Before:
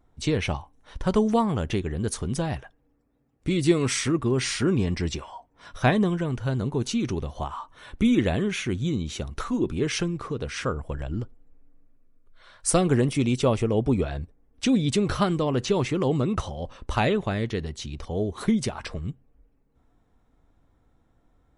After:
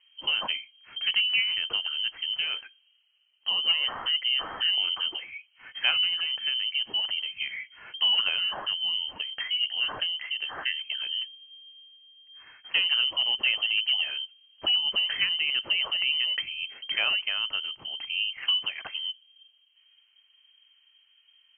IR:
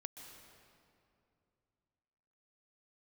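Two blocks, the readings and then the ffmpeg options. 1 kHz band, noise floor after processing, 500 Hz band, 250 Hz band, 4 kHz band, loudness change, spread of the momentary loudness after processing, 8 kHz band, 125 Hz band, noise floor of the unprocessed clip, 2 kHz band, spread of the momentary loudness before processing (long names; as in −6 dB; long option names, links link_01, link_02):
−10.0 dB, −65 dBFS, −22.5 dB, below −30 dB, +14.5 dB, 0.0 dB, 11 LU, below −40 dB, below −35 dB, −66 dBFS, +5.5 dB, 12 LU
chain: -filter_complex "[0:a]asplit=2[link_01][link_02];[link_02]acompressor=threshold=-34dB:ratio=5,volume=-1.5dB[link_03];[link_01][link_03]amix=inputs=2:normalize=0,volume=12.5dB,asoftclip=hard,volume=-12.5dB,lowpass=frequency=2700:width_type=q:width=0.5098,lowpass=frequency=2700:width_type=q:width=0.6013,lowpass=frequency=2700:width_type=q:width=0.9,lowpass=frequency=2700:width_type=q:width=2.563,afreqshift=-3200,volume=-5dB"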